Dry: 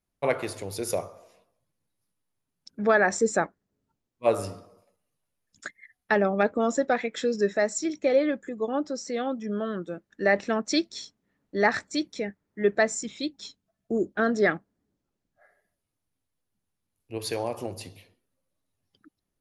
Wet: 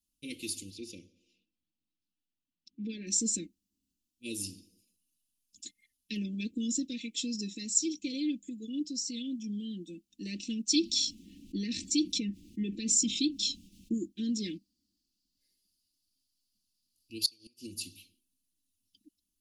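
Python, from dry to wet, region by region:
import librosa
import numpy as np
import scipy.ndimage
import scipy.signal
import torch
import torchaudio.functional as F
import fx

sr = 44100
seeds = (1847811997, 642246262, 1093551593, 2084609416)

y = fx.chain(x, sr, fx.lowpass(hz=2600.0, slope=12),
    fx.low_shelf(hz=180.0, db=-6.5), at=(0.7, 3.07))
y = fx.chain(y, sr, fx.lowpass(hz=2200.0, slope=6),
    fx.env_flatten(amount_pct=50), at=(10.75, 13.94))
y = fx.chain(y, sr, fx.peak_eq(hz=4700.0, db=15.0, octaves=0.44),
    fx.gate_flip(shuts_db=-18.0, range_db=-28), at=(14.53, 17.67))
y = scipy.signal.sosfilt(scipy.signal.cheby1(4, 1.0, [360.0, 2700.0], 'bandstop', fs=sr, output='sos'), y)
y = fx.high_shelf(y, sr, hz=2400.0, db=11.5)
y = y + 0.8 * np.pad(y, (int(3.8 * sr / 1000.0), 0))[:len(y)]
y = F.gain(torch.from_numpy(y), -7.5).numpy()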